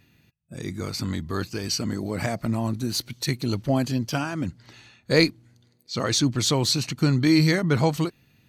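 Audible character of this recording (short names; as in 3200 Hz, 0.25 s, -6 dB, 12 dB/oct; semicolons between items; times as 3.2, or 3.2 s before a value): noise floor -63 dBFS; spectral tilt -5.0 dB/oct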